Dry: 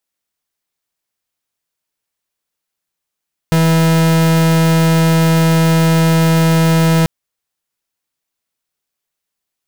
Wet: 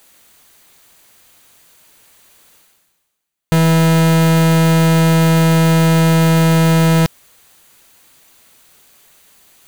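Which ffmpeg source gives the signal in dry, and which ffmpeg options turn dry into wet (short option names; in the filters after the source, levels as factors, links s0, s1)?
-f lavfi -i "aevalsrc='0.282*(2*lt(mod(163*t,1),0.43)-1)':d=3.54:s=44100"
-af "bandreject=f=5300:w=8.1,areverse,acompressor=mode=upward:threshold=0.0562:ratio=2.5,areverse"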